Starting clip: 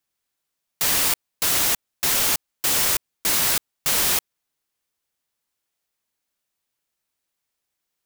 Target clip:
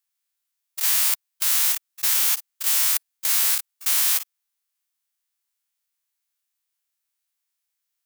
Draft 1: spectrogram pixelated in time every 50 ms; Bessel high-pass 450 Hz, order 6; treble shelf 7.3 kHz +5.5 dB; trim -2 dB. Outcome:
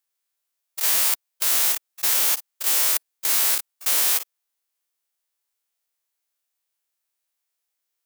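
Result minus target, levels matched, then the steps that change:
500 Hz band +11.0 dB
change: Bessel high-pass 1.1 kHz, order 6

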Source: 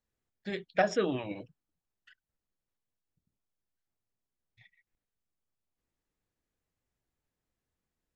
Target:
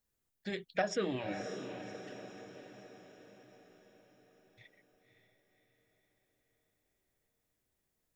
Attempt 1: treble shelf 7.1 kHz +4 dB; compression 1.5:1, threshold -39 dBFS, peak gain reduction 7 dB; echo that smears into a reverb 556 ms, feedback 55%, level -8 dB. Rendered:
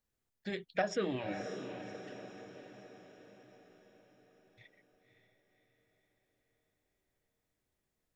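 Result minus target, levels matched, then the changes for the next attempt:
8 kHz band -3.0 dB
change: treble shelf 7.1 kHz +11 dB

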